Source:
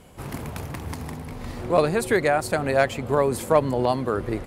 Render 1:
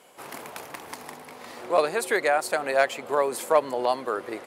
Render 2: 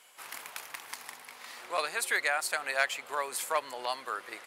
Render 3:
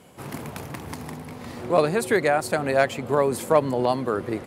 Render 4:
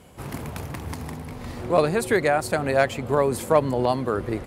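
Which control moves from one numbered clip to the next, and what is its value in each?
high-pass, cutoff frequency: 490 Hz, 1.4 kHz, 130 Hz, 41 Hz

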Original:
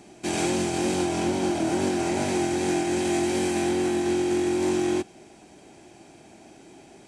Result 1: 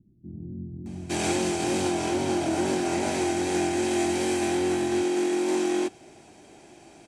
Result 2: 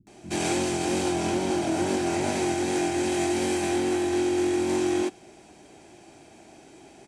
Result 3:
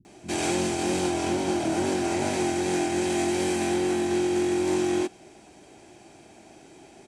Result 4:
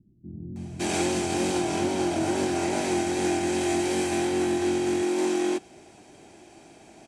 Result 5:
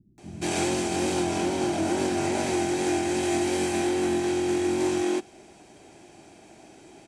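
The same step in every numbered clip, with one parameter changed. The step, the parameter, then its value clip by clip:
bands offset in time, time: 860 ms, 70 ms, 50 ms, 560 ms, 180 ms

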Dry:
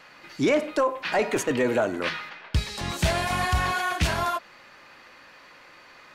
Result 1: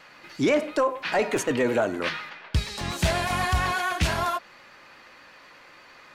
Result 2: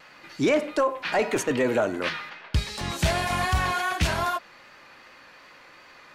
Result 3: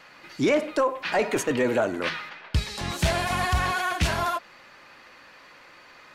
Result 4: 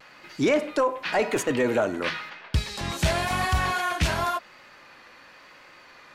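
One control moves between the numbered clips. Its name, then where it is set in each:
vibrato, rate: 8.3 Hz, 2.6 Hz, 16 Hz, 0.94 Hz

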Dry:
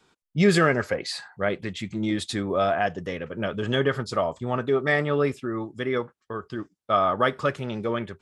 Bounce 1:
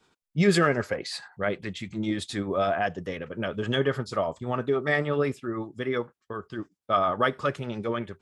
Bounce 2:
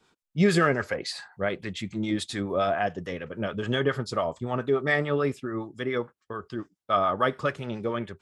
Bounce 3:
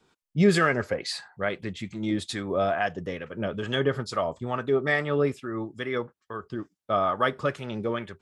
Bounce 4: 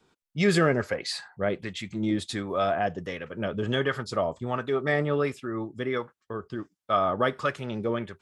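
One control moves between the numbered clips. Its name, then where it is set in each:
harmonic tremolo, rate: 10 Hz, 7 Hz, 2.3 Hz, 1.4 Hz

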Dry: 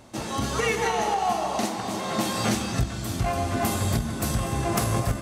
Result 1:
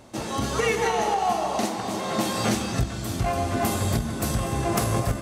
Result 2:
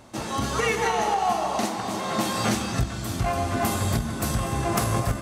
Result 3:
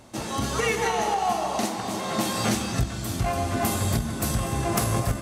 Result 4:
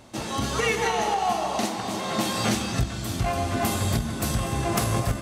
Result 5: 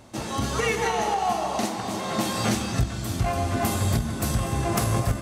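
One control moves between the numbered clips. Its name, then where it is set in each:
peaking EQ, frequency: 460 Hz, 1.2 kHz, 12 kHz, 3.3 kHz, 86 Hz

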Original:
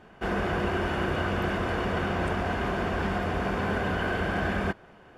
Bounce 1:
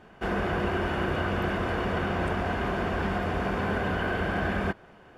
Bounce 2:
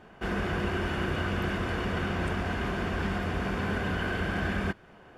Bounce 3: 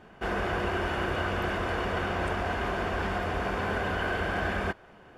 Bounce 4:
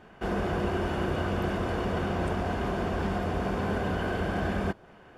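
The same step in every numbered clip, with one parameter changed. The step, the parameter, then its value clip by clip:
dynamic bell, frequency: 7 kHz, 680 Hz, 180 Hz, 1.9 kHz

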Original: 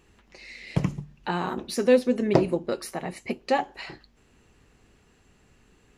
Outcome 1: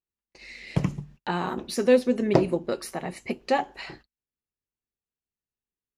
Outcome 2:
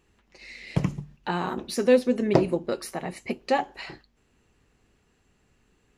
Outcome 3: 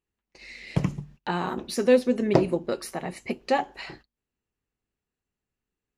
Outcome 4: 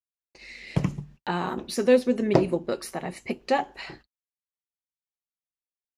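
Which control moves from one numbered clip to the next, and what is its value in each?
gate, range: -40 dB, -6 dB, -28 dB, -58 dB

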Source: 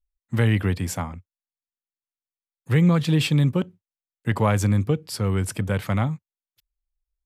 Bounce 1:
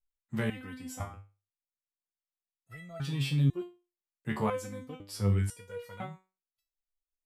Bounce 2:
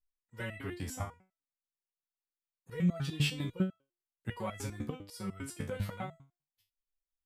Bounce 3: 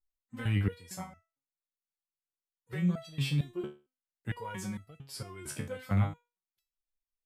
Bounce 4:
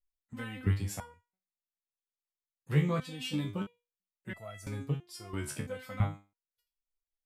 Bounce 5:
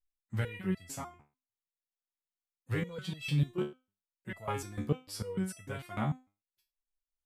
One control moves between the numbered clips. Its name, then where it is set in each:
resonator arpeggio, rate: 2 Hz, 10 Hz, 4.4 Hz, 3 Hz, 6.7 Hz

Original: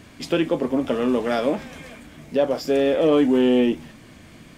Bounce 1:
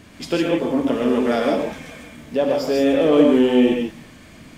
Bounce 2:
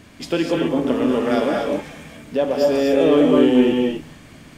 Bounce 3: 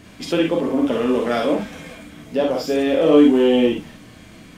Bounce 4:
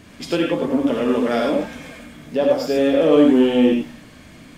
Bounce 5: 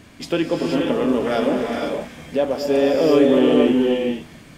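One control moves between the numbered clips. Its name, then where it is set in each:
gated-style reverb, gate: 180 ms, 280 ms, 80 ms, 120 ms, 520 ms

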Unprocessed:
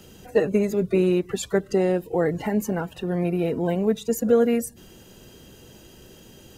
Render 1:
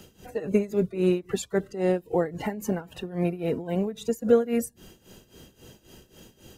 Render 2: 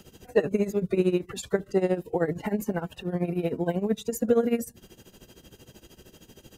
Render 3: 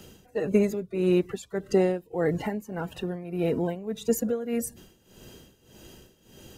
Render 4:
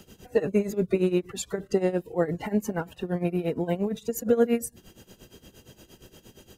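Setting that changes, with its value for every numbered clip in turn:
tremolo, rate: 3.7 Hz, 13 Hz, 1.7 Hz, 8.6 Hz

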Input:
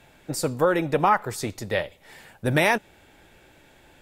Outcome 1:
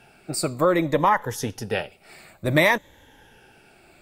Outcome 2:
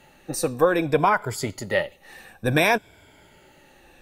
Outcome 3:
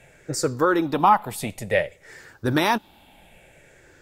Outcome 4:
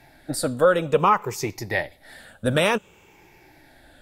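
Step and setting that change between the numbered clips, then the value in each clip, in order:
drifting ripple filter, ripples per octave: 1.1, 1.7, 0.51, 0.76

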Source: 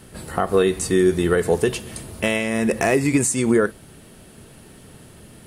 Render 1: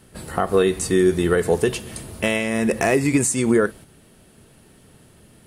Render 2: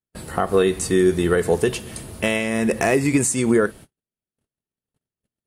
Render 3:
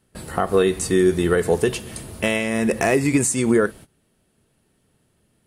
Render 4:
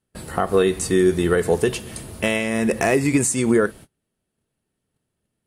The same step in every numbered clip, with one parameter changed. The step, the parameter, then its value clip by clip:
gate, range: -6 dB, -50 dB, -20 dB, -33 dB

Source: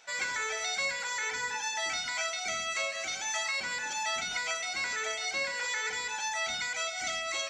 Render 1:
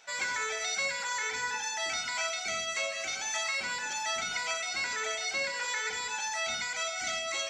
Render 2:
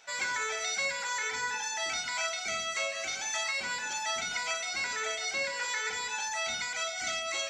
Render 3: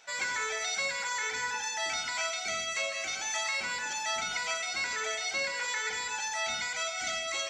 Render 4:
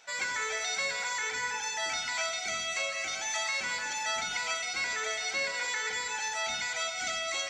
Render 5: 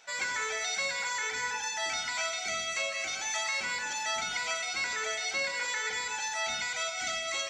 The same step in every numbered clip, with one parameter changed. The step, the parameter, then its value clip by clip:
gated-style reverb, gate: 130 ms, 80 ms, 190 ms, 460 ms, 290 ms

